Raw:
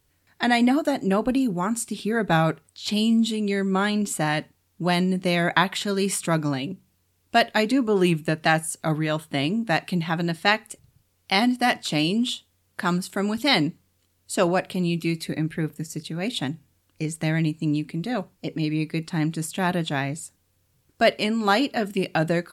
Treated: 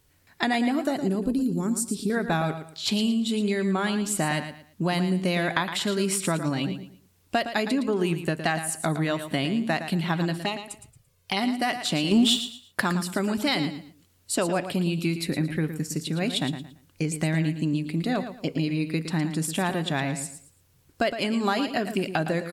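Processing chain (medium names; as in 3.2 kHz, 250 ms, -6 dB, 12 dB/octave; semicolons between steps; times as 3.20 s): 1.09–2.10 s: high-order bell 1.4 kHz -14 dB 2.8 oct; compression 5:1, threshold -26 dBFS, peak gain reduction 12 dB; 10.38–11.37 s: touch-sensitive flanger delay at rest 2 ms, full sweep at -26.5 dBFS; 12.11–12.82 s: waveshaping leveller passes 2; feedback delay 113 ms, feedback 27%, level -10 dB; trim +3.5 dB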